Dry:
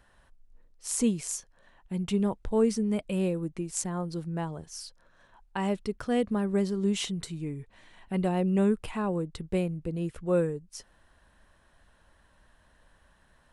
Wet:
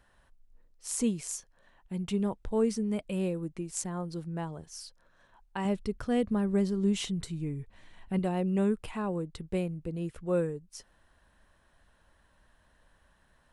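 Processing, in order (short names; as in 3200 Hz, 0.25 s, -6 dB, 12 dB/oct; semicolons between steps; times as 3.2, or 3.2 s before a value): 5.65–8.19 low shelf 160 Hz +8.5 dB; gain -3 dB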